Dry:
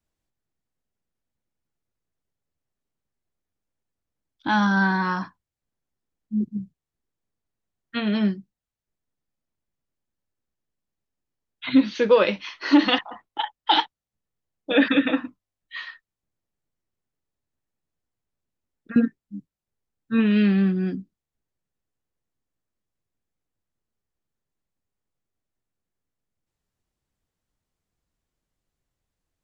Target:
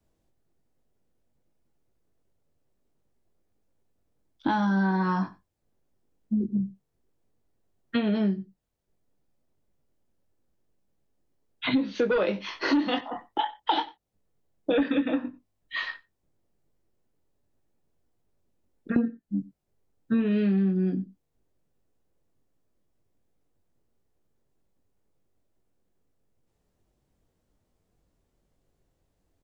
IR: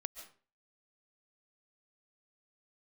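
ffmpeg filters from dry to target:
-filter_complex "[0:a]asplit=2[link_01][link_02];[link_02]adelay=21,volume=-7dB[link_03];[link_01][link_03]amix=inputs=2:normalize=0,aecho=1:1:92:0.0631,acrossover=split=340|690[link_04][link_05][link_06];[link_04]acontrast=81[link_07];[link_05]aeval=exprs='0.282*sin(PI/2*2.51*val(0)/0.282)':channel_layout=same[link_08];[link_07][link_08][link_06]amix=inputs=3:normalize=0,acompressor=threshold=-26dB:ratio=5,volume=2dB"

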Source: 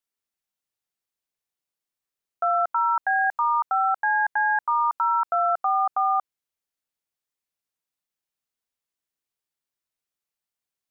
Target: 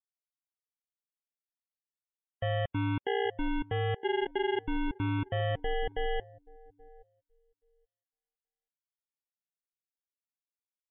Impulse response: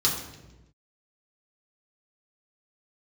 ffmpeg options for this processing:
-filter_complex "[0:a]asplit=2[link_01][link_02];[link_02]adelay=827,lowpass=frequency=1300:poles=1,volume=-20dB,asplit=2[link_03][link_04];[link_04]adelay=827,lowpass=frequency=1300:poles=1,volume=0.38,asplit=2[link_05][link_06];[link_06]adelay=827,lowpass=frequency=1300:poles=1,volume=0.38[link_07];[link_01][link_03][link_05][link_07]amix=inputs=4:normalize=0,aresample=16000,acrusher=samples=13:mix=1:aa=0.000001,aresample=44100,aresample=8000,aresample=44100,afftdn=noise_reduction=29:noise_floor=-38,volume=-8dB"

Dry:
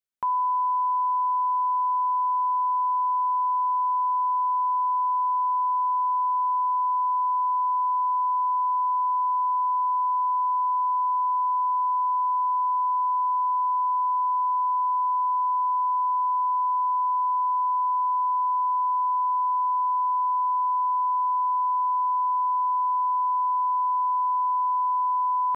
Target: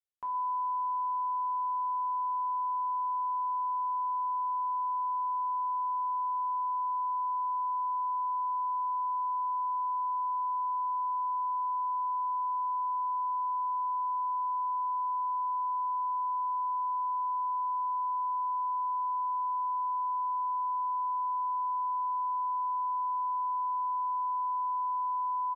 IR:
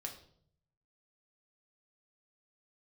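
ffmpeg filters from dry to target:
-filter_complex "[0:a]asplit=2[link_01][link_02];[link_02]adelay=116,lowpass=frequency=840:poles=1,volume=-10.5dB,asplit=2[link_03][link_04];[link_04]adelay=116,lowpass=frequency=840:poles=1,volume=0.32,asplit=2[link_05][link_06];[link_06]adelay=116,lowpass=frequency=840:poles=1,volume=0.32[link_07];[link_01][link_03][link_05][link_07]amix=inputs=4:normalize=0[link_08];[1:a]atrim=start_sample=2205,afade=type=out:start_time=0.23:duration=0.01,atrim=end_sample=10584[link_09];[link_08][link_09]afir=irnorm=-1:irlink=0,volume=-8.5dB"

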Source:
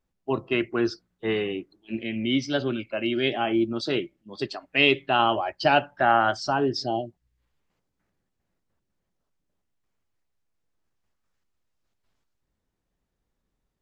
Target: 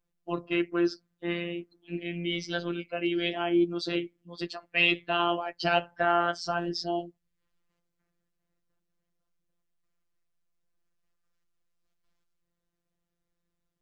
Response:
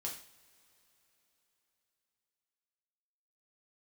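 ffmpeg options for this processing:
-af "bandreject=frequency=840:width=12,afftfilt=real='hypot(re,im)*cos(PI*b)':imag='0':win_size=1024:overlap=0.75"

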